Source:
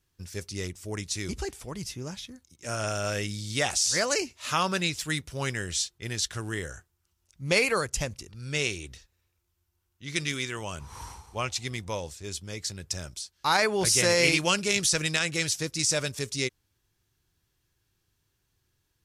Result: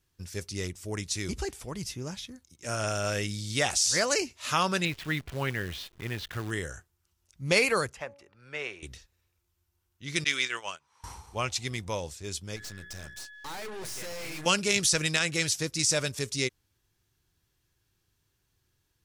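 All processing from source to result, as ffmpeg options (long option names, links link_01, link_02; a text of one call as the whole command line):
ffmpeg -i in.wav -filter_complex "[0:a]asettb=1/sr,asplit=3[link_01][link_02][link_03];[link_01]atrim=end=4.854[link_04];[link_02]atrim=start=4.85:end=6.51,asetpts=PTS-STARTPTS,afade=type=in:duration=0.004:curve=qsin,afade=type=out:start_time=1.656:duration=0.004:curve=qsin,lowpass=frequency=3200:width=0.5412,lowpass=frequency=3200:width=1.3066,acompressor=mode=upward:threshold=-35dB:ratio=2.5:attack=3.2:release=140:knee=2.83:detection=peak,acrusher=bits=8:dc=4:mix=0:aa=0.000001[link_05];[link_03]atrim=start=6.506[link_06];[link_04][link_05]acrossfade=duration=0.004:curve1=hsin:curve2=qsin[link_07];[link_07][link_06]acrossfade=duration=0.004:curve1=qsin:curve2=hsin,asettb=1/sr,asplit=3[link_08][link_09][link_10];[link_08]atrim=end=7.934[link_11];[link_09]atrim=start=7.93:end=8.83,asetpts=PTS-STARTPTS,afade=type=in:duration=0.004:curve=qsin,afade=type=out:start_time=0.896:duration=0.004:curve=qsin,highpass=frequency=180:poles=1,acrossover=split=490 2300:gain=0.2 1 0.0794[link_12][link_13][link_14];[link_12][link_13][link_14]amix=inputs=3:normalize=0,bandreject=frequency=282.3:width_type=h:width=4,bandreject=frequency=564.6:width_type=h:width=4,bandreject=frequency=846.9:width_type=h:width=4,bandreject=frequency=1129.2:width_type=h:width=4[link_15];[link_10]atrim=start=8.826[link_16];[link_11][link_15]acrossfade=duration=0.004:curve1=hsin:curve2=qsin[link_17];[link_17][link_16]acrossfade=duration=0.004:curve1=qsin:curve2=hsin,asettb=1/sr,asplit=3[link_18][link_19][link_20];[link_18]atrim=end=10.244[link_21];[link_19]atrim=start=10.24:end=11.04,asetpts=PTS-STARTPTS,afade=type=in:duration=0.004:curve=qsin,afade=type=out:start_time=0.796:duration=0.004:curve=qsin,agate=range=-23dB:threshold=-36dB:ratio=16:release=100:detection=peak,bandpass=frequency=2300:width_type=q:width=0.5,acontrast=33[link_22];[link_20]atrim=start=11.036[link_23];[link_21][link_22]acrossfade=duration=0.004:curve1=hsin:curve2=qsin[link_24];[link_24][link_23]acrossfade=duration=0.004:curve1=qsin:curve2=hsin,asettb=1/sr,asplit=3[link_25][link_26][link_27];[link_25]atrim=end=12.564[link_28];[link_26]atrim=start=12.56:end=14.46,asetpts=PTS-STARTPTS,afade=type=in:duration=0.004:curve=qsin,afade=type=out:start_time=1.896:duration=0.004:curve=qsin,bandreject=frequency=60:width_type=h:width=6,bandreject=frequency=120:width_type=h:width=6,bandreject=frequency=180:width_type=h:width=6,bandreject=frequency=240:width_type=h:width=6,bandreject=frequency=300:width_type=h:width=6,bandreject=frequency=360:width_type=h:width=6,bandreject=frequency=420:width_type=h:width=6,aeval=exprs='val(0)+0.00794*sin(2*PI*1700*n/s)':channel_layout=same,aeval=exprs='(tanh(79.4*val(0)+0.75)-tanh(0.75))/79.4':channel_layout=same[link_29];[link_27]atrim=start=14.456[link_30];[link_28][link_29]acrossfade=duration=0.004:curve1=hsin:curve2=qsin[link_31];[link_31][link_30]acrossfade=duration=0.004:curve1=qsin:curve2=hsin" out.wav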